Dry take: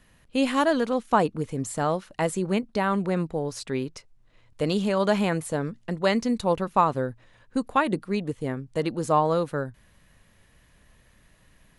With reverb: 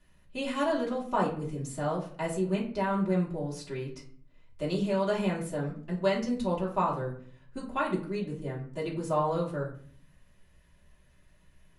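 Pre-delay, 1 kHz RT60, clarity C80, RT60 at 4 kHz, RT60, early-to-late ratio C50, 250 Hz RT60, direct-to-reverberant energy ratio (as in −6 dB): 3 ms, 0.45 s, 12.5 dB, 0.35 s, 0.50 s, 9.0 dB, 0.80 s, −6.0 dB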